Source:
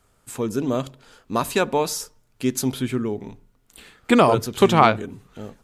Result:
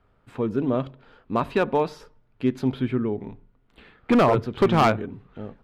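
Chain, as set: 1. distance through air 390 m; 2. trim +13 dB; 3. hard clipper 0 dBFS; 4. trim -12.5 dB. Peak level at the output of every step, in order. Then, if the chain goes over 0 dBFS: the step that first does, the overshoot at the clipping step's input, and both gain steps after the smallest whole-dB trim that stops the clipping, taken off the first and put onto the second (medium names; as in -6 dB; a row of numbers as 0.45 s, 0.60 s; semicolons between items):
-3.5 dBFS, +9.5 dBFS, 0.0 dBFS, -12.5 dBFS; step 2, 9.5 dB; step 2 +3 dB, step 4 -2.5 dB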